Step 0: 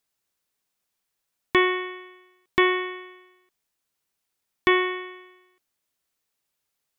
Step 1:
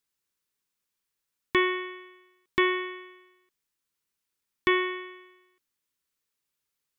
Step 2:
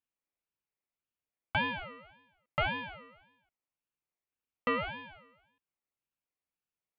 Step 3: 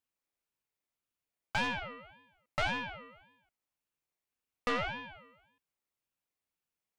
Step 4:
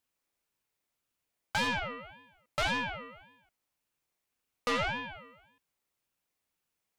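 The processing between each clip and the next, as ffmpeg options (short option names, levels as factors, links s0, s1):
-af "equalizer=f=690:w=4.9:g=-14,volume=0.668"
-af "highshelf=f=2100:t=q:w=1.5:g=-12.5,aeval=exprs='val(0)*sin(2*PI*1100*n/s+1100*0.25/1.8*sin(2*PI*1.8*n/s))':c=same,volume=0.631"
-af "aeval=exprs='(tanh(31.6*val(0)+0.5)-tanh(0.5))/31.6':c=same,volume=1.58"
-af "aeval=exprs='0.075*sin(PI/2*1.58*val(0)/0.075)':c=same,volume=0.794"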